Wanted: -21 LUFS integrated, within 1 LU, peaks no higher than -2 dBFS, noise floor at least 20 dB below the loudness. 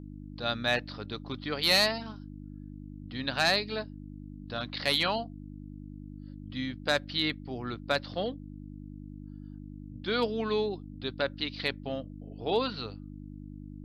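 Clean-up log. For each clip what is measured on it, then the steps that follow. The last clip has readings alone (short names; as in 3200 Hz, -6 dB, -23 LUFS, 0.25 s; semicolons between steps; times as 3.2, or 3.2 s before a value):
hum 50 Hz; harmonics up to 300 Hz; hum level -41 dBFS; loudness -30.5 LUFS; peak -15.5 dBFS; loudness target -21.0 LUFS
-> de-hum 50 Hz, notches 6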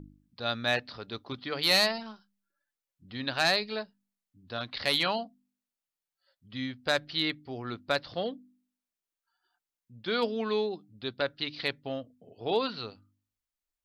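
hum none; loudness -30.5 LUFS; peak -15.5 dBFS; loudness target -21.0 LUFS
-> gain +9.5 dB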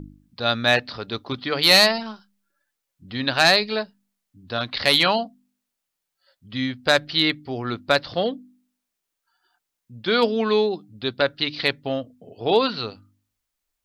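loudness -21.0 LUFS; peak -6.0 dBFS; noise floor -82 dBFS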